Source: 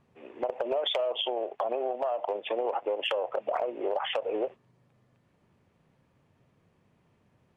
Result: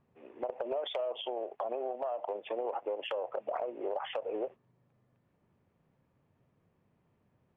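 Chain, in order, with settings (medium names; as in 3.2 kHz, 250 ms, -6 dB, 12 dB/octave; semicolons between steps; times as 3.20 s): treble shelf 3.1 kHz -11 dB; trim -5 dB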